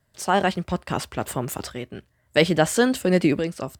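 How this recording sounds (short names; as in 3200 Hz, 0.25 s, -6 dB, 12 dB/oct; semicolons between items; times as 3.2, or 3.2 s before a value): tremolo saw up 0.59 Hz, depth 65%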